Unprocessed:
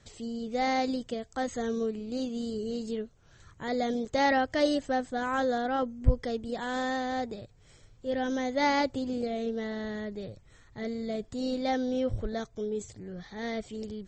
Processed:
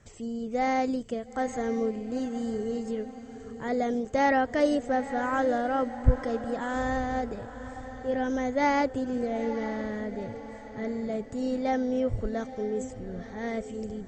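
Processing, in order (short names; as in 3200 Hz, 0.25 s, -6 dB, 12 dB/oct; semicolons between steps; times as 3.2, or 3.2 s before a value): bell 4000 Hz -12.5 dB 0.75 oct; on a send: diffused feedback echo 0.916 s, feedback 47%, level -12.5 dB; on the sum: gain +2 dB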